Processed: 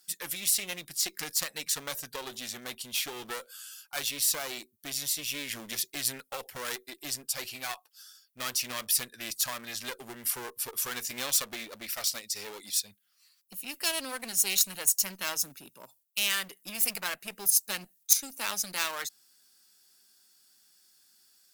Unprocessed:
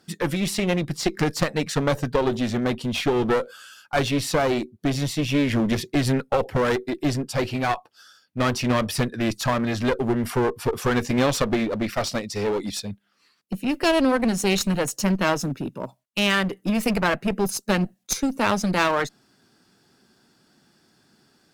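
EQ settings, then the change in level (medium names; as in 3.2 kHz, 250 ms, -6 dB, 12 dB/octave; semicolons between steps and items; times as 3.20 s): pre-emphasis filter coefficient 0.97; treble shelf 11 kHz +10 dB; +2.0 dB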